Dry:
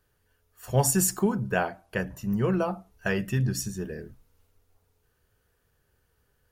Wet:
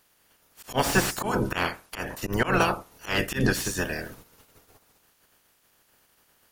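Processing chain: spectral limiter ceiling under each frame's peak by 25 dB; auto swell 0.137 s; slew limiter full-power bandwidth 130 Hz; gain +5.5 dB

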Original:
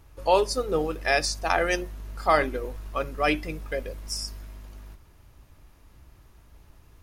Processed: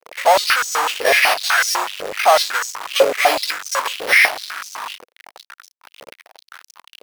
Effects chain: sample-and-hold 6×; fuzz box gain 43 dB, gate -47 dBFS; stepped high-pass 8 Hz 500–5900 Hz; gain -2.5 dB

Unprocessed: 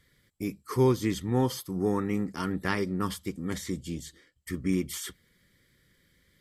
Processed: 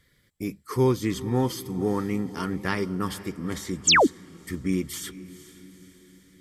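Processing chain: diffused feedback echo 0.462 s, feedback 52%, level -15.5 dB; painted sound fall, 3.87–4.07, 220–8900 Hz -18 dBFS; gain +1.5 dB

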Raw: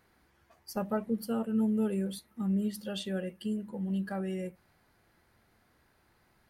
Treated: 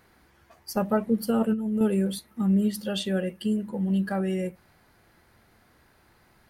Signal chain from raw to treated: 1.27–1.81 negative-ratio compressor -31 dBFS, ratio -0.5; gain +7.5 dB

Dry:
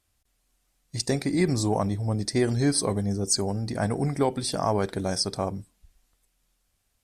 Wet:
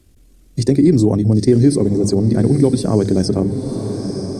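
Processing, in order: resonant low shelf 530 Hz +13 dB, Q 1.5; tempo 1.6×; in parallel at +3 dB: limiter -6.5 dBFS, peak gain reduction 7.5 dB; on the sum: notches 50/100/150/200 Hz; on a send: diffused feedback echo 0.95 s, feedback 42%, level -12 dB; on the sum: three-band squash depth 40%; gain -7 dB

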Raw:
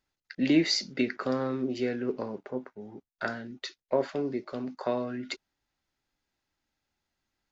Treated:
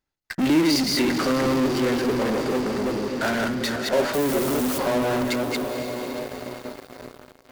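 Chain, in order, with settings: reverse delay 0.209 s, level -4 dB; 4.13–4.77 added noise white -42 dBFS; high shelf 6100 Hz +6.5 dB; diffused feedback echo 0.495 s, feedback 62%, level -15.5 dB; modulation noise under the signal 25 dB; high shelf 2400 Hz -8 dB; de-hum 120.4 Hz, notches 16; in parallel at -11.5 dB: fuzz box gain 47 dB, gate -55 dBFS

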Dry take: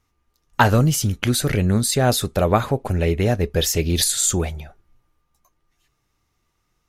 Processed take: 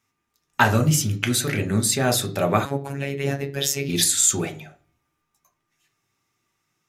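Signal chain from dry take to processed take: reverb RT60 0.40 s, pre-delay 3 ms, DRR 5.5 dB; 2.65–3.89 robotiser 139 Hz; gain -1 dB

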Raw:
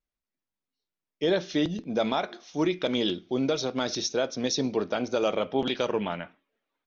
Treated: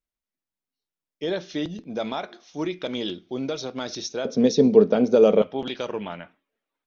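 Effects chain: 4.25–5.42 small resonant body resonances 210/430 Hz, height 17 dB, ringing for 30 ms; gain -2.5 dB

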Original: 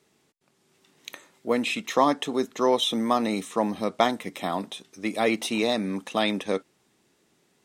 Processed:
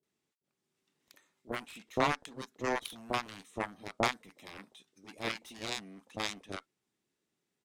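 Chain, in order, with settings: added harmonics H 7 -15 dB, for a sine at -4.5 dBFS; bands offset in time lows, highs 30 ms, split 720 Hz; gain -5.5 dB

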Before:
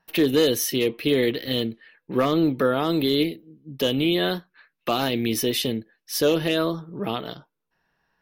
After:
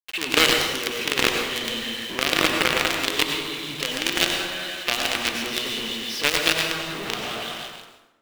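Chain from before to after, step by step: in parallel at -0.5 dB: compressor 6:1, threshold -30 dBFS, peak gain reduction 14 dB; on the sum: soft clip -12 dBFS, distortion -19 dB; three-band isolator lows -12 dB, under 210 Hz, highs -15 dB, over 5600 Hz; on a send: split-band echo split 1100 Hz, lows 0.119 s, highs 0.167 s, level -4 dB; on the sum: companded quantiser 2-bit; bell 2700 Hz +10 dB 1.7 oct; plate-style reverb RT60 1 s, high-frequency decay 0.65×, pre-delay 80 ms, DRR 3 dB; gain -9.5 dB

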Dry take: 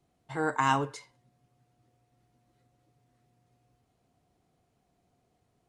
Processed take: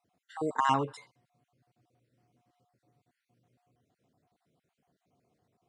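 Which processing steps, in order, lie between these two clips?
random spectral dropouts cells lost 36%; HPF 110 Hz 12 dB/oct; high shelf 5400 Hz -5 dB

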